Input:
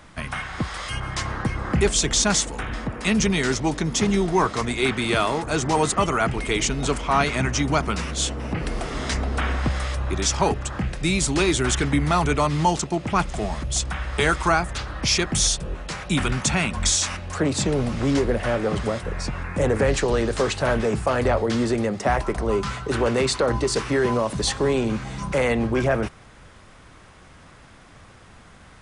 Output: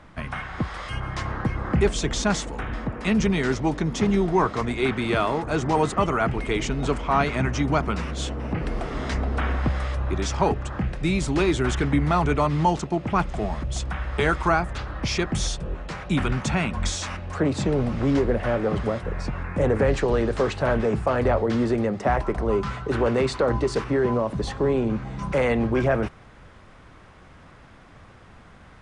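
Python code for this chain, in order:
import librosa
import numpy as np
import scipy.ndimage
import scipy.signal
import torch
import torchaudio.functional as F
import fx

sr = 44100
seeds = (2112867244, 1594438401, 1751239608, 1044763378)

y = fx.lowpass(x, sr, hz=fx.steps((0.0, 1800.0), (23.84, 1000.0), (25.19, 2500.0)), slope=6)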